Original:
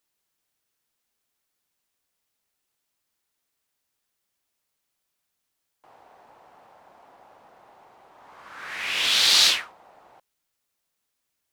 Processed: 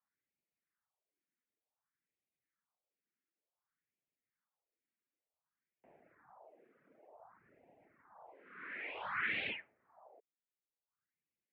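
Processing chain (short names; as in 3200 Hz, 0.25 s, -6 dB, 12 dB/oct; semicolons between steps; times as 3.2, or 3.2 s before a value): phaser stages 4, 0.55 Hz, lowest notch 150–1300 Hz; mistuned SSB -97 Hz 210–2300 Hz; reverb removal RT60 1.4 s; gain -4 dB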